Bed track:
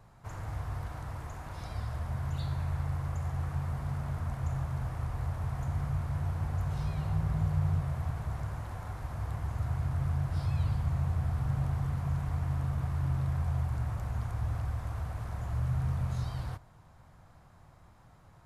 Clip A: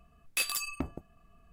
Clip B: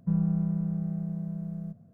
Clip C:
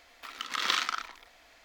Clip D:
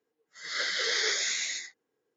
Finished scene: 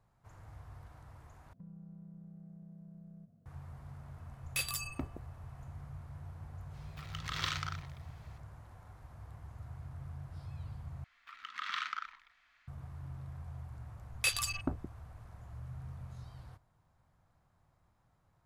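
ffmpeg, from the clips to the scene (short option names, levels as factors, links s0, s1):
-filter_complex "[1:a]asplit=2[s0][s1];[3:a]asplit=2[s2][s3];[0:a]volume=0.188[s4];[2:a]acompressor=threshold=0.0112:ratio=6:attack=3.2:release=140:knee=1:detection=peak[s5];[s3]firequalizer=gain_entry='entry(180,0);entry(340,-14);entry(570,-13);entry(1200,9);entry(4900,-3);entry(11000,-10)':delay=0.05:min_phase=1[s6];[s1]afwtdn=0.00891[s7];[s4]asplit=3[s8][s9][s10];[s8]atrim=end=1.534[s11];[s5]atrim=end=1.93,asetpts=PTS-STARTPTS,volume=0.299[s12];[s9]atrim=start=3.456:end=11.044[s13];[s6]atrim=end=1.64,asetpts=PTS-STARTPTS,volume=0.188[s14];[s10]atrim=start=12.676[s15];[s0]atrim=end=1.52,asetpts=PTS-STARTPTS,volume=0.562,afade=t=in:d=0.004:c=hsin,afade=t=out:st=1.516:d=0.004:c=hsin,adelay=4190[s16];[s2]atrim=end=1.64,asetpts=PTS-STARTPTS,volume=0.376,afade=t=in:d=0.004:c=hsin,afade=t=out:st=1.636:d=0.004:c=hsin,adelay=297234S[s17];[s7]atrim=end=1.52,asetpts=PTS-STARTPTS,afade=t=in:d=0.004:c=hsin,afade=t=out:st=1.516:d=0.004:c=hsin,adelay=13870[s18];[s11][s12]acrossfade=d=0.004:c1=hsin:c2=hsin[s19];[s19][s13]acrossfade=d=0.004:c1=hsin:c2=hsin[s20];[s20][s14]acrossfade=d=0.004:c1=hsin:c2=hsin[s21];[s21][s15]acrossfade=d=0.004:c1=hsin:c2=hsin[s22];[s22][s16][s17][s18]amix=inputs=4:normalize=0"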